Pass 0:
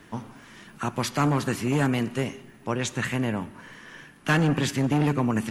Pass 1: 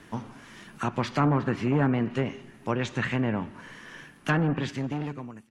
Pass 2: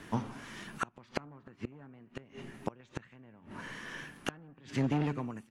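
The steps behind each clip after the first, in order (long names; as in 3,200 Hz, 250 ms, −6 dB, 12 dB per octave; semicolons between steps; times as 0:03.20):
fade-out on the ending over 1.48 s; treble cut that deepens with the level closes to 1,700 Hz, closed at −20.5 dBFS
gate with flip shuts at −19 dBFS, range −30 dB; level +1 dB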